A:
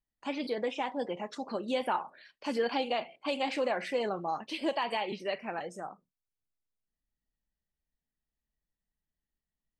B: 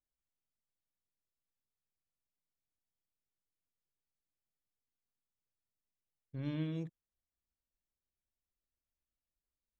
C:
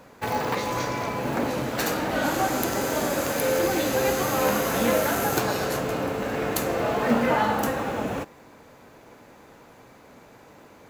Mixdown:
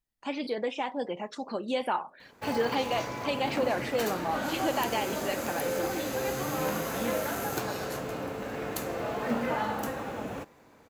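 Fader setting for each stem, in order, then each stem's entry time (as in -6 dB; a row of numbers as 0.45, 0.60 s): +1.5, -3.0, -8.0 dB; 0.00, 0.00, 2.20 s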